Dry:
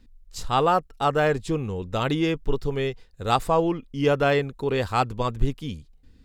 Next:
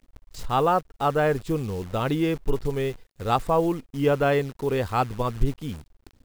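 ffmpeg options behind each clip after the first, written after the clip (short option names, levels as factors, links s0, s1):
-af "highshelf=f=2700:g=-8.5,acrusher=bits=8:dc=4:mix=0:aa=0.000001"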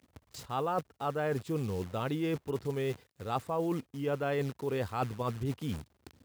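-af "highpass=f=77:w=0.5412,highpass=f=77:w=1.3066,areverse,acompressor=threshold=0.0282:ratio=4,areverse"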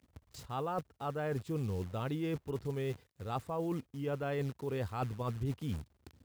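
-af "lowshelf=f=110:g=10.5,volume=0.562"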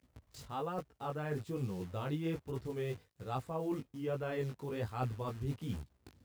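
-af "flanger=delay=15.5:depth=5.3:speed=1.2,volume=1.19"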